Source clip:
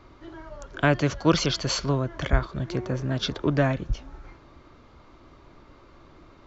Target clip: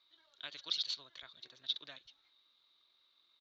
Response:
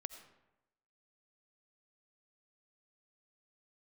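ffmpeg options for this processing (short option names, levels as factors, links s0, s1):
-af "bandpass=f=3800:t=q:w=12:csg=0,atempo=1.9,volume=1.68"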